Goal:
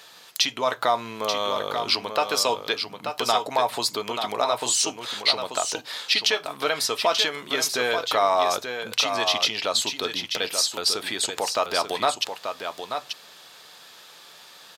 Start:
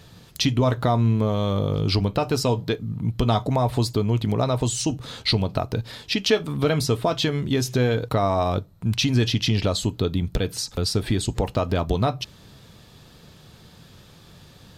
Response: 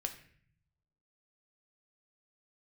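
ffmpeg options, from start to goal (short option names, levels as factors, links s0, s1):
-af "highpass=790,alimiter=limit=0.188:level=0:latency=1:release=496,aecho=1:1:885:0.447,volume=2"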